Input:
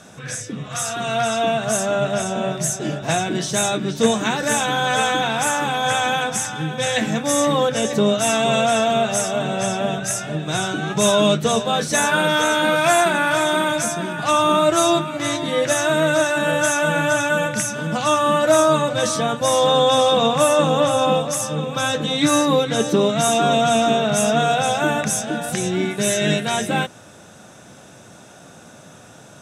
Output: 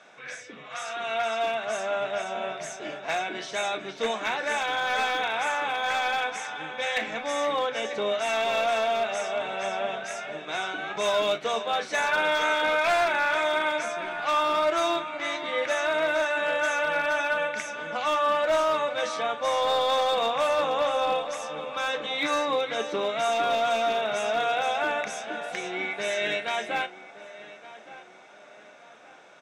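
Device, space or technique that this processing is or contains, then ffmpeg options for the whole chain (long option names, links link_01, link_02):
megaphone: -filter_complex "[0:a]highpass=520,lowpass=3600,equalizer=frequency=2200:width_type=o:width=0.22:gain=9,asoftclip=type=hard:threshold=-13dB,asplit=2[link_01][link_02];[link_02]adelay=36,volume=-13.5dB[link_03];[link_01][link_03]amix=inputs=2:normalize=0,asettb=1/sr,asplit=3[link_04][link_05][link_06];[link_04]atrim=end=16.834[link_07];[link_05]atrim=start=16.83:end=17.54,asetpts=PTS-STARTPTS,afade=type=in:duration=0.004:curve=qsin,afade=type=out:start_time=0.706:duration=0.004:curve=qsin,bandreject=frequency=7000:width=6.9[link_08];[link_06]atrim=start=17.536[link_09];[link_07][link_08]acrossfade=duration=0.004:curve1=hsin:curve2=qsin[link_10];[link_10][link_09]acrossfade=duration=0.004:curve1=qsin:curve2=hsin,asplit=2[link_11][link_12];[link_12]adelay=1169,lowpass=frequency=2800:poles=1,volume=-16.5dB,asplit=2[link_13][link_14];[link_14]adelay=1169,lowpass=frequency=2800:poles=1,volume=0.41,asplit=2[link_15][link_16];[link_16]adelay=1169,lowpass=frequency=2800:poles=1,volume=0.41,asplit=2[link_17][link_18];[link_18]adelay=1169,lowpass=frequency=2800:poles=1,volume=0.41[link_19];[link_11][link_13][link_15][link_17][link_19]amix=inputs=5:normalize=0,volume=-5.5dB"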